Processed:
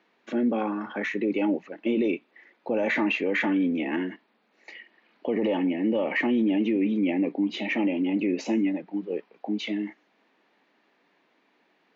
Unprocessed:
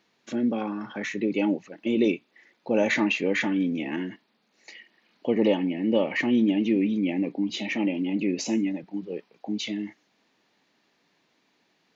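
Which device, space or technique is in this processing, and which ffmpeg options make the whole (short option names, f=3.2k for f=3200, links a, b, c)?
DJ mixer with the lows and highs turned down: -filter_complex "[0:a]acrossover=split=200 3000:gain=0.0891 1 0.158[a][b][c];[a][b][c]amix=inputs=3:normalize=0,alimiter=limit=-21dB:level=0:latency=1:release=21,volume=4dB"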